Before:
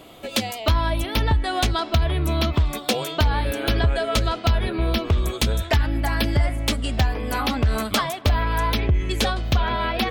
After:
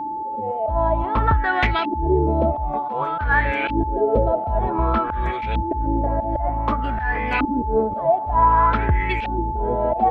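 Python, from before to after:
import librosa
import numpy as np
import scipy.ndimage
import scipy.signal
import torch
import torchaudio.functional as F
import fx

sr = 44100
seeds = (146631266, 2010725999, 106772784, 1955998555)

y = fx.filter_lfo_lowpass(x, sr, shape='saw_up', hz=0.54, low_hz=280.0, high_hz=2600.0, q=6.4)
y = fx.auto_swell(y, sr, attack_ms=140.0)
y = y + 10.0 ** (-25.0 / 20.0) * np.sin(2.0 * np.pi * 870.0 * np.arange(len(y)) / sr)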